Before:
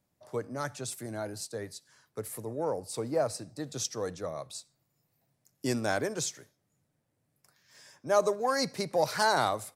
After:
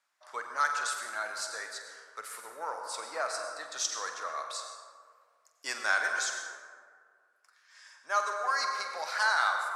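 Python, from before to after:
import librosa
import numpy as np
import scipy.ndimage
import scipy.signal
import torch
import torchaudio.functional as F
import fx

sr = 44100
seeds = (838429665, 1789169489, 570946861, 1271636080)

y = scipy.signal.sosfilt(scipy.signal.butter(2, 7800.0, 'lowpass', fs=sr, output='sos'), x)
y = fx.rider(y, sr, range_db=4, speed_s=2.0)
y = fx.highpass_res(y, sr, hz=1300.0, q=2.3)
y = fx.doubler(y, sr, ms=47.0, db=-10.5)
y = fx.rev_plate(y, sr, seeds[0], rt60_s=1.9, hf_ratio=0.4, predelay_ms=80, drr_db=4.5)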